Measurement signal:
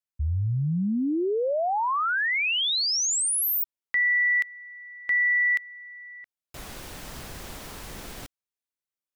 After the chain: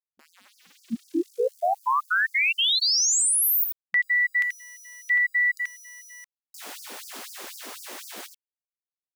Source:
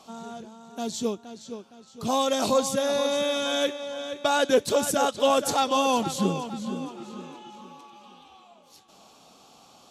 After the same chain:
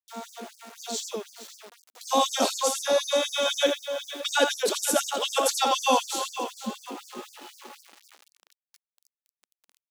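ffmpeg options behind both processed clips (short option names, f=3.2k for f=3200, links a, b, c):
-af "aecho=1:1:83:0.501,aeval=exprs='val(0)*gte(abs(val(0)),0.0075)':c=same,afftfilt=real='re*gte(b*sr/1024,200*pow(4700/200,0.5+0.5*sin(2*PI*4*pts/sr)))':imag='im*gte(b*sr/1024,200*pow(4700/200,0.5+0.5*sin(2*PI*4*pts/sr)))':win_size=1024:overlap=0.75,volume=2.5dB"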